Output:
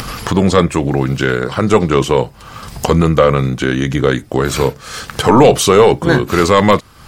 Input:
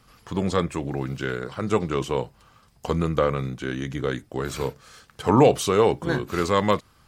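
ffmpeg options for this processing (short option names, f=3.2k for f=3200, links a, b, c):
-af "acompressor=mode=upward:threshold=-24dB:ratio=2.5,apsyclip=14.5dB,volume=-1.5dB"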